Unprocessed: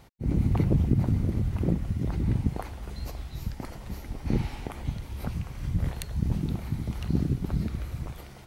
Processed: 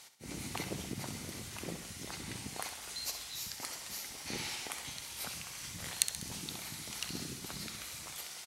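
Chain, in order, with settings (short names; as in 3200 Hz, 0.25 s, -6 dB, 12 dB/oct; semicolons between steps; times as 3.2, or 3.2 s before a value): band-pass 7600 Hz, Q 0.95; on a send: feedback echo 65 ms, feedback 55%, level -10 dB; on the sum: gain +14 dB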